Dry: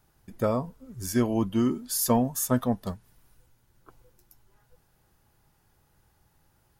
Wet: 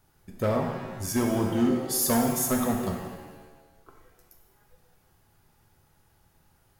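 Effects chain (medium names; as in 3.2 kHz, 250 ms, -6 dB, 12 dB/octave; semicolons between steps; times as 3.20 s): hard clipper -20 dBFS, distortion -13 dB; pitch-shifted reverb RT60 1.2 s, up +7 st, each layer -8 dB, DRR 2 dB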